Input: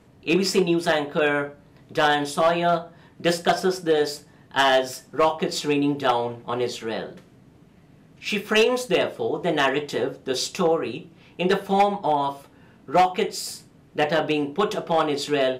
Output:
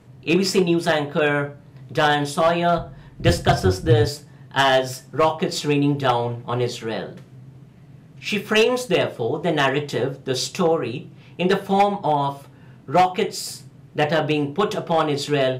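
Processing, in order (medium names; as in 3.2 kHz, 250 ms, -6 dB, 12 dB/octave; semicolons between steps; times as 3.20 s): 2.77–4.09 s: octave divider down 2 oct, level +1 dB; peaking EQ 130 Hz +14 dB 0.39 oct; trim +1.5 dB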